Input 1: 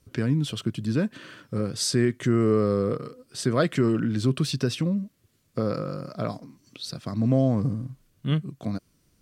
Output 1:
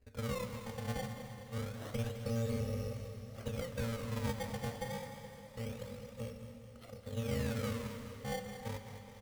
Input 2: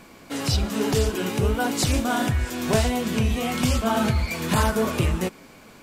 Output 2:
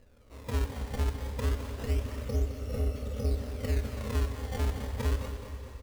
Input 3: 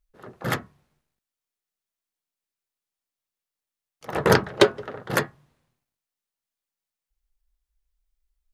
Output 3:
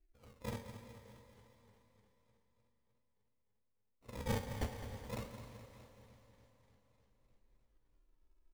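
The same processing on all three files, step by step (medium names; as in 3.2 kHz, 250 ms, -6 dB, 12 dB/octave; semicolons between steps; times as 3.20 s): bit-reversed sample order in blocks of 128 samples; de-hum 92.63 Hz, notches 39; in parallel at -2 dB: compression, threshold -37 dBFS; on the sum: Savitzky-Golay filter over 65 samples; static phaser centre 390 Hz, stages 4; decimation with a swept rate 19×, swing 160% 0.27 Hz; on a send: feedback delay 211 ms, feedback 56%, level -11 dB; on the sum: Schroeder reverb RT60 3.8 s, combs from 30 ms, DRR 9.5 dB; modulated delay 302 ms, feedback 68%, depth 114 cents, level -19.5 dB; trim -3 dB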